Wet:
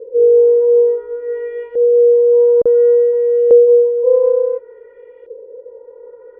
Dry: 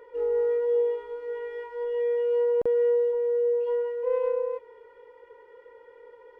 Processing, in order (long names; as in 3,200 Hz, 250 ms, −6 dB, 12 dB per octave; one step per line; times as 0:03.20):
low shelf with overshoot 670 Hz +6.5 dB, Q 3
auto-filter low-pass saw up 0.57 Hz 470–2,900 Hz